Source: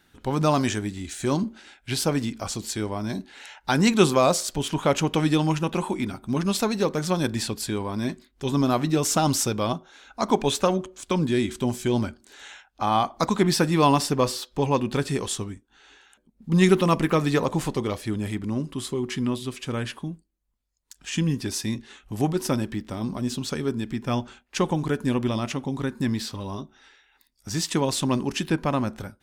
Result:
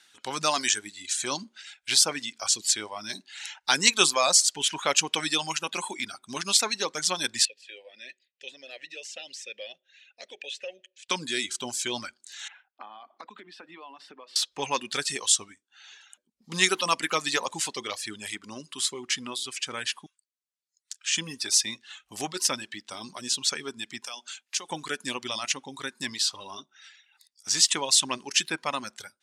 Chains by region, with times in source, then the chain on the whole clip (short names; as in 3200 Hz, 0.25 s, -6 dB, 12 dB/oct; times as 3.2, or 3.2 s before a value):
7.45–11.09 resonant high shelf 1900 Hz +6.5 dB, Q 1.5 + compressor 2.5:1, threshold -22 dBFS + vowel filter e
12.48–14.36 steep high-pass 190 Hz + compressor 16:1, threshold -33 dBFS + air absorption 470 m
20.06–21.17 steep high-pass 1200 Hz + high shelf 10000 Hz -7 dB
24.04–24.7 HPF 190 Hz 24 dB/oct + high shelf 3100 Hz +9.5 dB + compressor 2.5:1, threshold -39 dBFS
whole clip: HPF 53 Hz; reverb removal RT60 0.94 s; weighting filter ITU-R 468; gain -2 dB